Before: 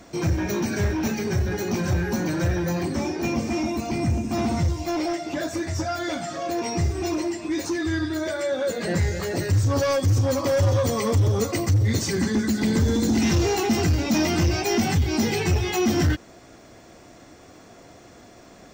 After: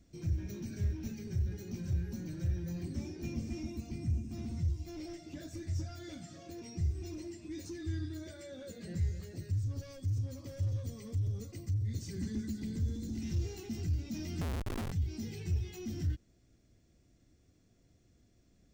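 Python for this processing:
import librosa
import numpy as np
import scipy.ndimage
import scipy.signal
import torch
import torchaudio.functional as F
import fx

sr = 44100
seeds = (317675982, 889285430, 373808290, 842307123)

y = fx.tone_stack(x, sr, knobs='10-0-1')
y = fx.schmitt(y, sr, flips_db=-38.0, at=(14.41, 14.92))
y = fx.rider(y, sr, range_db=4, speed_s=0.5)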